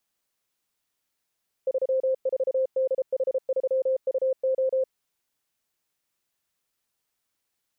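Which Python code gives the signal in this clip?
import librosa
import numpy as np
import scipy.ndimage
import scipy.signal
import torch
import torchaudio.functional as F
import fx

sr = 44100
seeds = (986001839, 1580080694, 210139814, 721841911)

y = fx.morse(sr, text='34DH3UO', wpm=33, hz=524.0, level_db=-20.5)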